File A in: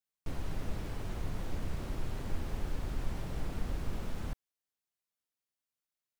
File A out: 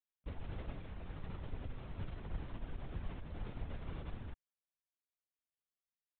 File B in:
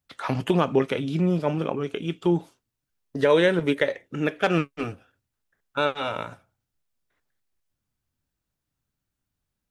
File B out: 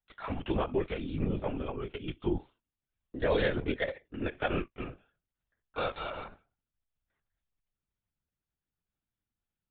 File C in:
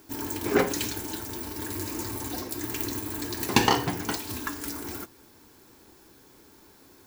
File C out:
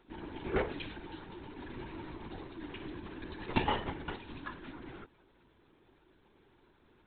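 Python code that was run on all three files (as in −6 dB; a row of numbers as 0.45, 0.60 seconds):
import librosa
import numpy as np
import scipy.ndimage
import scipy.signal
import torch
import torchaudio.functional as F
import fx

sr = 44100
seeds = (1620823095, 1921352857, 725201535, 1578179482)

y = fx.lpc_vocoder(x, sr, seeds[0], excitation='whisper', order=16)
y = y * 10.0 ** (-9.0 / 20.0)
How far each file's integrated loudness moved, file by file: −6.5, −9.5, −11.0 LU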